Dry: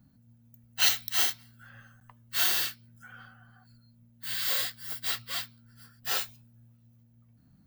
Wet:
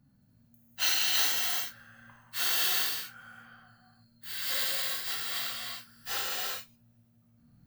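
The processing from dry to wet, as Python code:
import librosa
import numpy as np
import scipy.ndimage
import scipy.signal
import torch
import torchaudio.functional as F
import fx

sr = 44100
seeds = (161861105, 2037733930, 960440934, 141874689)

y = fx.vibrato(x, sr, rate_hz=11.0, depth_cents=16.0)
y = fx.rev_gated(y, sr, seeds[0], gate_ms=420, shape='flat', drr_db=-6.0)
y = y * librosa.db_to_amplitude(-6.0)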